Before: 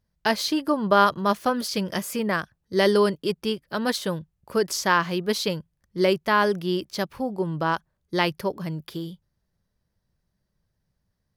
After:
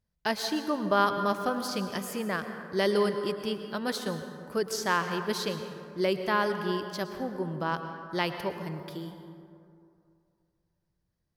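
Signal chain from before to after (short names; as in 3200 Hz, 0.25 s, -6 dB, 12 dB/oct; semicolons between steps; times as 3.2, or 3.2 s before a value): plate-style reverb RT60 2.5 s, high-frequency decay 0.4×, pre-delay 95 ms, DRR 7.5 dB; gain -6.5 dB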